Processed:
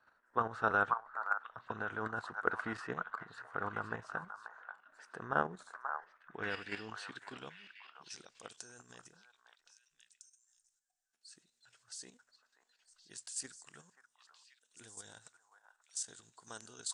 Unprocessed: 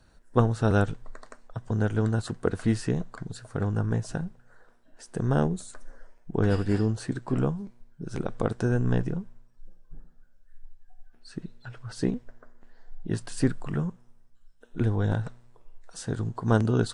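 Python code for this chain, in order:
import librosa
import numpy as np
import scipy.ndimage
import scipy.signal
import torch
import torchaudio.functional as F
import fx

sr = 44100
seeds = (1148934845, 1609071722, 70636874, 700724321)

y = fx.filter_sweep_bandpass(x, sr, from_hz=1300.0, to_hz=7300.0, start_s=5.6, end_s=8.66, q=2.3)
y = fx.echo_stepped(y, sr, ms=535, hz=1100.0, octaves=1.4, feedback_pct=70, wet_db=-4.0)
y = fx.level_steps(y, sr, step_db=9)
y = y * librosa.db_to_amplitude(7.5)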